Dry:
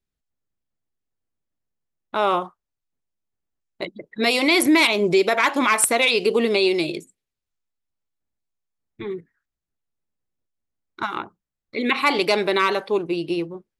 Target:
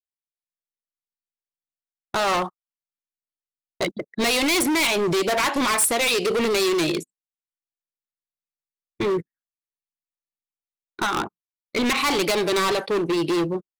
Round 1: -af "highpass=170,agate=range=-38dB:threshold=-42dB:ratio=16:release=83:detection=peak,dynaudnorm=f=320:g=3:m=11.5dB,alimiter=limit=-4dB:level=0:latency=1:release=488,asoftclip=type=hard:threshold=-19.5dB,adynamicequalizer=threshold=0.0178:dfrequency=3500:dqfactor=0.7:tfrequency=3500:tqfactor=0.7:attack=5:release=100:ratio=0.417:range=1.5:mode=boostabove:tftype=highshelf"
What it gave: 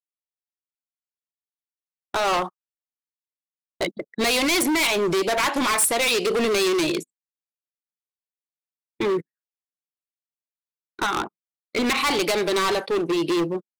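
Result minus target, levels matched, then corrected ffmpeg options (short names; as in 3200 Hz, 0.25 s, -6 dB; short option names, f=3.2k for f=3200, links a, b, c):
125 Hz band -3.0 dB
-af "agate=range=-38dB:threshold=-42dB:ratio=16:release=83:detection=peak,dynaudnorm=f=320:g=3:m=11.5dB,alimiter=limit=-4dB:level=0:latency=1:release=488,asoftclip=type=hard:threshold=-19.5dB,adynamicequalizer=threshold=0.0178:dfrequency=3500:dqfactor=0.7:tfrequency=3500:tqfactor=0.7:attack=5:release=100:ratio=0.417:range=1.5:mode=boostabove:tftype=highshelf"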